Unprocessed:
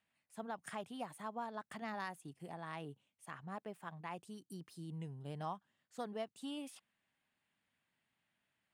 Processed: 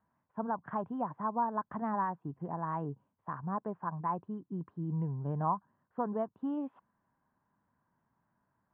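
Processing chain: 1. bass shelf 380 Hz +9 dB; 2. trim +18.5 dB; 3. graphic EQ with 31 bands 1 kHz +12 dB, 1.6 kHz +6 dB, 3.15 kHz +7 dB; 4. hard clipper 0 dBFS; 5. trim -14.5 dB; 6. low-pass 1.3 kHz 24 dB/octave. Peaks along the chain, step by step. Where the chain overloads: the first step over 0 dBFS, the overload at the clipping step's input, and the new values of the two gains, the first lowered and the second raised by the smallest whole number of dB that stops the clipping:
-27.5 dBFS, -9.0 dBFS, -3.5 dBFS, -3.5 dBFS, -18.0 dBFS, -18.5 dBFS; nothing clips

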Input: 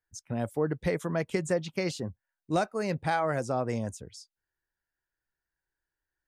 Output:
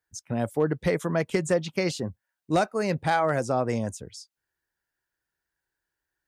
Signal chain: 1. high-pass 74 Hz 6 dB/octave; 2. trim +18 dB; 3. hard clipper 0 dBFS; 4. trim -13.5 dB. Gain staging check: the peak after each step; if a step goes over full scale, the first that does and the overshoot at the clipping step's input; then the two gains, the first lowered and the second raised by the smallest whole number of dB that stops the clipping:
-14.5 dBFS, +3.5 dBFS, 0.0 dBFS, -13.5 dBFS; step 2, 3.5 dB; step 2 +14 dB, step 4 -9.5 dB

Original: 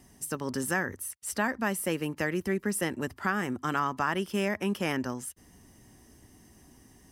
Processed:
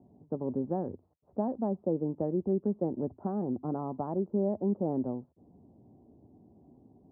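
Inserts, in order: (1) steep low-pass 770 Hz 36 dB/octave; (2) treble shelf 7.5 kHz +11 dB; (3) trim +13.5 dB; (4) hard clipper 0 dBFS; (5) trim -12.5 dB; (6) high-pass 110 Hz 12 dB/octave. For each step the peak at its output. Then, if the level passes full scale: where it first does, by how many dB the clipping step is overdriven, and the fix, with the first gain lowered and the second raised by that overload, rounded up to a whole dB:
-18.5 dBFS, -18.5 dBFS, -5.0 dBFS, -5.0 dBFS, -17.5 dBFS, -19.0 dBFS; nothing clips

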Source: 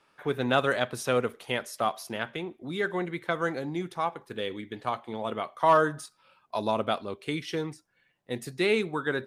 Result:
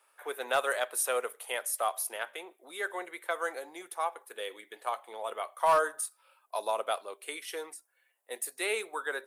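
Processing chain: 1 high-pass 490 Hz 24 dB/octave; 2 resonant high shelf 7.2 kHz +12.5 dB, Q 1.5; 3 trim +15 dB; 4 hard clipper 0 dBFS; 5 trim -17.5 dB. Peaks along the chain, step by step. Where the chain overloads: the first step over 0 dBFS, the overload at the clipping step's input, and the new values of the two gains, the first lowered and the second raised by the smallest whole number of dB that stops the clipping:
-10.5 dBFS, -10.5 dBFS, +4.5 dBFS, 0.0 dBFS, -17.5 dBFS; step 3, 4.5 dB; step 3 +10 dB, step 5 -12.5 dB

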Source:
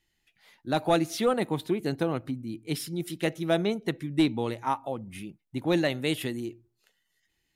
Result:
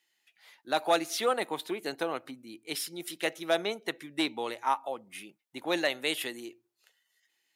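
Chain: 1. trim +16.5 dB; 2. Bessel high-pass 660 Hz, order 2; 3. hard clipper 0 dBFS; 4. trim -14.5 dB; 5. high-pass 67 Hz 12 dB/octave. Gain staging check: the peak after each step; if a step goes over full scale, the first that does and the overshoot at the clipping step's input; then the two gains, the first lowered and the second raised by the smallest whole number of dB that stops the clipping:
+2.0 dBFS, +3.5 dBFS, 0.0 dBFS, -14.5 dBFS, -14.0 dBFS; step 1, 3.5 dB; step 1 +12.5 dB, step 4 -10.5 dB

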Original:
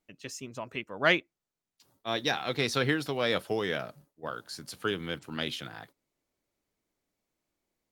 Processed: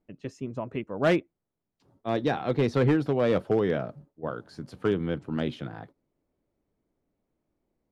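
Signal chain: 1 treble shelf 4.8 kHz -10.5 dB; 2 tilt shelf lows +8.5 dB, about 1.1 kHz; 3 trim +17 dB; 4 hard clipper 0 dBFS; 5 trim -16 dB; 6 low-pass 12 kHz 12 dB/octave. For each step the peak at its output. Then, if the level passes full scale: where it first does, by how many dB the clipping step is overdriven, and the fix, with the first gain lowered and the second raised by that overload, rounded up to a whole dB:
-11.0 dBFS, -10.0 dBFS, +7.0 dBFS, 0.0 dBFS, -16.0 dBFS, -16.0 dBFS; step 3, 7.0 dB; step 3 +10 dB, step 5 -9 dB

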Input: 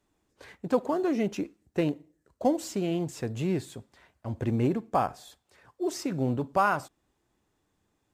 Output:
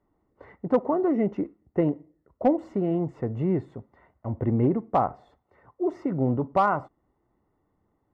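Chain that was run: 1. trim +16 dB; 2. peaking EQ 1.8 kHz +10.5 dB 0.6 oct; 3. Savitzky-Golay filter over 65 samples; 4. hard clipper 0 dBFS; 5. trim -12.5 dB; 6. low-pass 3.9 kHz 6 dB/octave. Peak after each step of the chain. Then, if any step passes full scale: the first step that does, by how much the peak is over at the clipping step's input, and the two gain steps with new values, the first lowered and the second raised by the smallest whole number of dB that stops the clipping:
+3.0 dBFS, +6.0 dBFS, +3.0 dBFS, 0.0 dBFS, -12.5 dBFS, -12.5 dBFS; step 1, 3.0 dB; step 1 +13 dB, step 5 -9.5 dB

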